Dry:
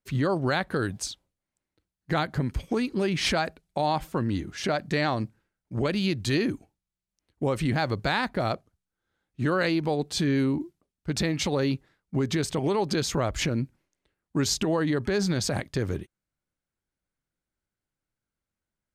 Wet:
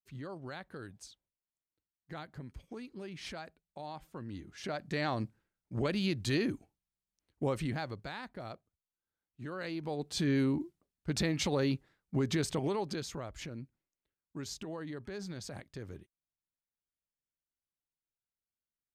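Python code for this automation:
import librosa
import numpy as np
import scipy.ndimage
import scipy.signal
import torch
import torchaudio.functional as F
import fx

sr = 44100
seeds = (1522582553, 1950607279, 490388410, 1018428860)

y = fx.gain(x, sr, db=fx.line((4.04, -18.5), (5.21, -6.0), (7.49, -6.0), (8.11, -17.0), (9.5, -17.0), (10.3, -5.0), (12.52, -5.0), (13.29, -16.5)))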